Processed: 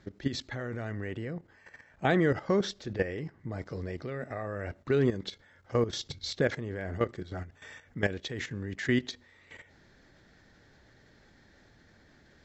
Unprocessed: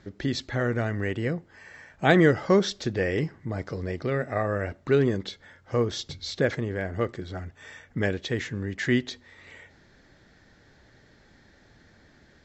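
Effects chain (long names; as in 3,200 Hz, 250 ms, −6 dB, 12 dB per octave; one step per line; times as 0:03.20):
0:00.92–0:03.52: high-shelf EQ 3,600 Hz −4.5 dB
output level in coarse steps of 12 dB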